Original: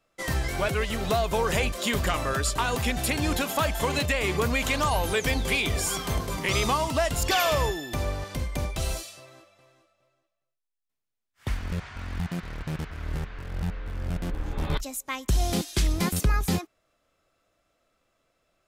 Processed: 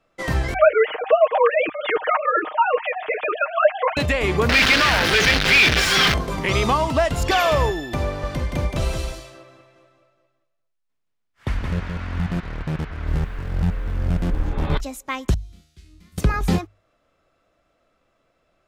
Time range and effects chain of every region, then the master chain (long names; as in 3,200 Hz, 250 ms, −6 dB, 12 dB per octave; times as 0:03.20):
0:00.54–0:03.97: three sine waves on the formant tracks + high-frequency loss of the air 210 metres + comb filter 6.5 ms, depth 79%
0:04.49–0:06.14: sign of each sample alone + flat-topped bell 2,800 Hz +11 dB 2.3 octaves
0:08.06–0:12.40: notch filter 770 Hz, Q 25 + single-tap delay 172 ms −4.5 dB
0:13.07–0:14.50: bass and treble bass +3 dB, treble +3 dB + bit-depth reduction 10 bits, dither triangular
0:15.34–0:16.18: guitar amp tone stack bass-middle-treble 6-0-2 + tuned comb filter 77 Hz, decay 0.79 s, mix 90%
whole clip: low-pass filter 2,500 Hz 6 dB per octave; mains-hum notches 50/100 Hz; level +6.5 dB